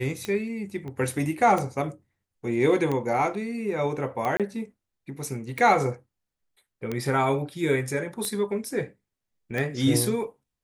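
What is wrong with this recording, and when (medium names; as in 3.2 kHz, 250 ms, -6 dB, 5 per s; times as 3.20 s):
tick 45 rpm -16 dBFS
0.88 s: pop -27 dBFS
4.37–4.40 s: dropout 27 ms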